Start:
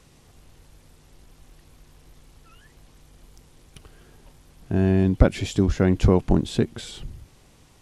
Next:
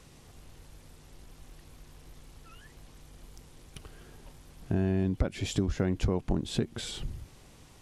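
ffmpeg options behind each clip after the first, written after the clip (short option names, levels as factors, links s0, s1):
-af "acompressor=threshold=0.0501:ratio=4"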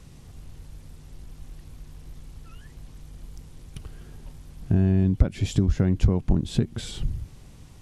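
-af "bass=f=250:g=10,treble=f=4000:g=1"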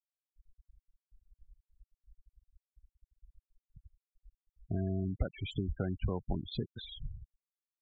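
-filter_complex "[0:a]acrossover=split=540 5800:gain=0.224 1 0.178[s0][s1][s2];[s0][s1][s2]amix=inputs=3:normalize=0,afftfilt=real='re*gte(hypot(re,im),0.0316)':imag='im*gte(hypot(re,im),0.0316)':win_size=1024:overlap=0.75,volume=0.841"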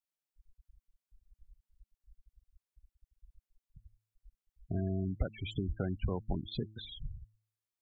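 -af "bandreject=f=107.9:t=h:w=4,bandreject=f=215.8:t=h:w=4,bandreject=f=323.7:t=h:w=4"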